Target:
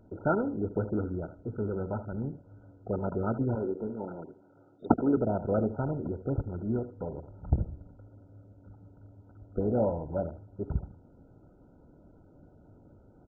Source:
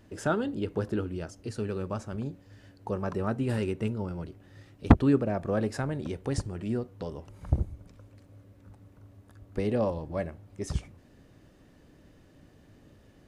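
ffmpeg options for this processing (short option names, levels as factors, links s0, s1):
-filter_complex "[0:a]asettb=1/sr,asplit=3[s0][s1][s2];[s0]atrim=end=3.554[s3];[s1]atrim=start=3.55:end=5.17,asetpts=PTS-STARTPTS,afade=t=in:d=0.004:c=qsin,afade=t=out:st=1.616:d=0.004:c=qsin,highpass=260,lowpass=5400[s4];[s2]atrim=start=5.166[s5];[s3][s4]acrossfade=d=0.004:c1=hsin:c2=qsin[s6];[s6][s5]acrossfade=d=0.004:c1=qsin:c2=hsin,aecho=1:1:77|154:0.211|0.038" -ar 16000 -c:a mp2 -b:a 8k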